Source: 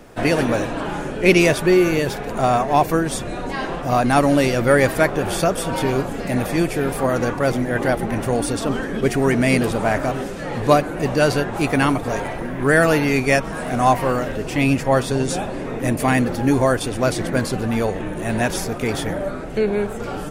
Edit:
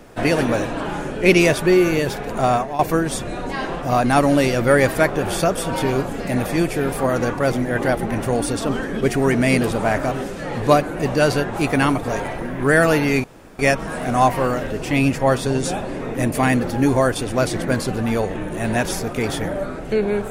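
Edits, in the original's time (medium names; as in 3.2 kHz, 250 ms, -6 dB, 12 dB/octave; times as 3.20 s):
2.53–2.79 s: fade out, to -16 dB
13.24 s: insert room tone 0.35 s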